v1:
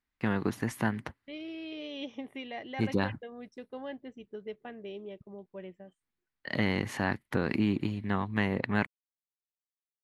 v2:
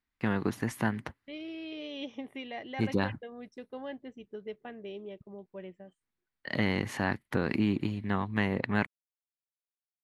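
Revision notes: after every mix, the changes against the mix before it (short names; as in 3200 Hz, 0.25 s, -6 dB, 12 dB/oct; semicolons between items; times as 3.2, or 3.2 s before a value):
none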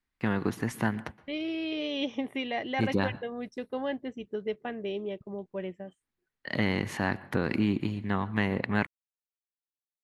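second voice +8.0 dB; reverb: on, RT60 0.40 s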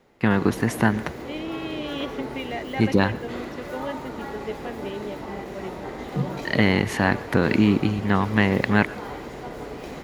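first voice +8.5 dB; background: unmuted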